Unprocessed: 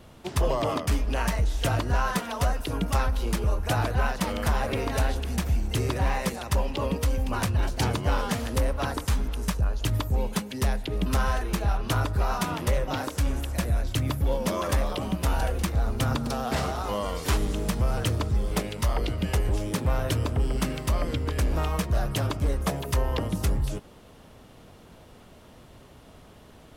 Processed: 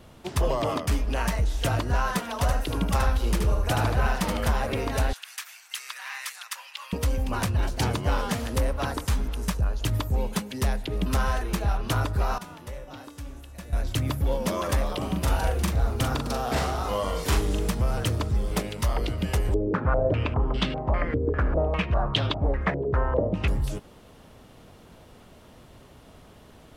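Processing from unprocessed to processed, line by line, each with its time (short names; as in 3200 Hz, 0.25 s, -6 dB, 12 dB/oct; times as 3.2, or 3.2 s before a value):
2.31–4.51 echo 76 ms -4.5 dB
5.13–6.93 HPF 1300 Hz 24 dB/oct
12.38–13.73 resonator 290 Hz, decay 1 s, mix 80%
14.97–17.71 doubler 41 ms -4.5 dB
19.54–23.48 stepped low-pass 5 Hz 430–3500 Hz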